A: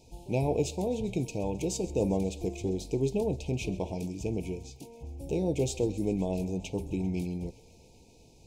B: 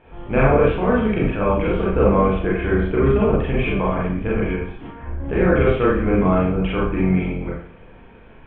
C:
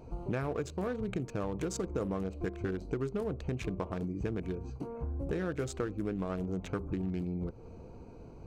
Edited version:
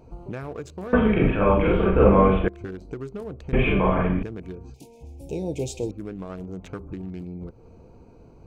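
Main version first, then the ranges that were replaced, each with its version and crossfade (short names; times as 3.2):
C
0.93–2.48 from B
3.53–4.23 from B
4.74–5.91 from A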